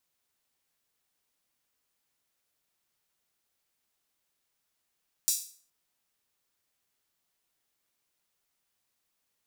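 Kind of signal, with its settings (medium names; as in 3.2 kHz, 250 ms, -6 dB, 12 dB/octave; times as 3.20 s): open hi-hat length 0.42 s, high-pass 5.9 kHz, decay 0.44 s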